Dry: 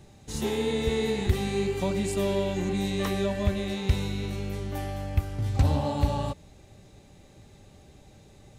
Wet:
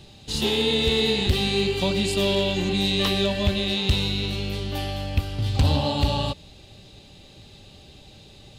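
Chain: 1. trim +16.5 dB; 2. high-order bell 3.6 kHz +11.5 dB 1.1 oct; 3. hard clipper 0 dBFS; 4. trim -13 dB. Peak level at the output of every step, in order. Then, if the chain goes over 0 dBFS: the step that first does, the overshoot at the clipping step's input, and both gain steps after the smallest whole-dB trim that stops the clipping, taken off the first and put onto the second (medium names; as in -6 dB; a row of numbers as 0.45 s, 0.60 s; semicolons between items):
+4.5 dBFS, +7.0 dBFS, 0.0 dBFS, -13.0 dBFS; step 1, 7.0 dB; step 1 +9.5 dB, step 4 -6 dB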